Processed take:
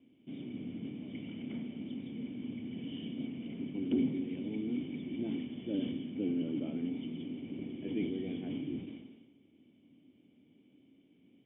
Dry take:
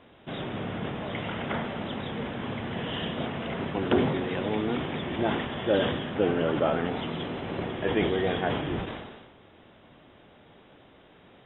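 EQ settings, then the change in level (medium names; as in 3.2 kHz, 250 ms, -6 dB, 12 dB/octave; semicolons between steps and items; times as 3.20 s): cascade formant filter i; high-pass 110 Hz 12 dB/octave; distance through air 86 m; 0.0 dB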